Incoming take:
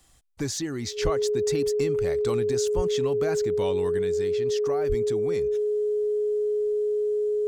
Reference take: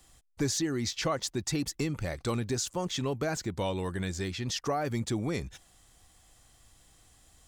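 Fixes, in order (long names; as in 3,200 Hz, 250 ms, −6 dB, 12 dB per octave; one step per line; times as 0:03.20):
notch filter 420 Hz, Q 30
high-pass at the plosives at 0:01.03/0:02.75/0:04.88
level 0 dB, from 0:03.99 +3.5 dB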